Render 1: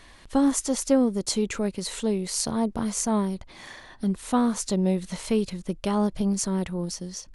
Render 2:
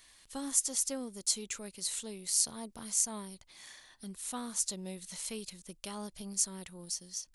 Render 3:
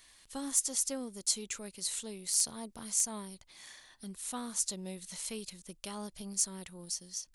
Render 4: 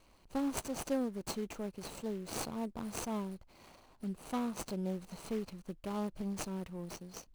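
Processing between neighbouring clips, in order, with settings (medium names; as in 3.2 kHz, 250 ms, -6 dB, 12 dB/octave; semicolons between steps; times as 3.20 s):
pre-emphasis filter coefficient 0.9
hard clipper -17 dBFS, distortion -22 dB
median filter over 25 samples; trim +6 dB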